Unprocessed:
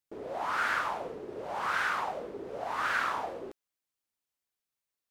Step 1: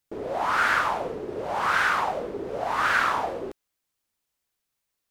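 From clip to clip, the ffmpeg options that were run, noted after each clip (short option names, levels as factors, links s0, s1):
-af "lowshelf=f=110:g=6,volume=2.37"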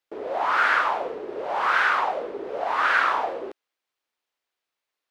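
-filter_complex "[0:a]acrossover=split=310 4600:gain=0.126 1 0.224[s0][s1][s2];[s0][s1][s2]amix=inputs=3:normalize=0,volume=1.26"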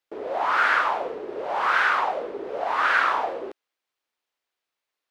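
-af anull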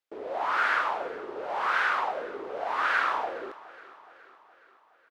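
-af "aecho=1:1:418|836|1254|1672|2090:0.106|0.0604|0.0344|0.0196|0.0112,volume=0.562"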